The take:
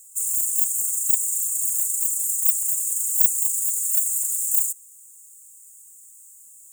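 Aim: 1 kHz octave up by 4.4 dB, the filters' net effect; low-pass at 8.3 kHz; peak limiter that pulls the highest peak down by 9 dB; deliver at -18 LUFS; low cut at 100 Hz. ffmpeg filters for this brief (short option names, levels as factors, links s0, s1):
-af "highpass=100,lowpass=8300,equalizer=f=1000:t=o:g=5.5,volume=4.22,alimiter=limit=0.266:level=0:latency=1"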